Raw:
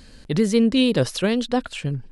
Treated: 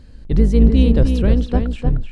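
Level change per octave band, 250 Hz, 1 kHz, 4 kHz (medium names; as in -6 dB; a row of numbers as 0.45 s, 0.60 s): +2.5 dB, -2.0 dB, -8.5 dB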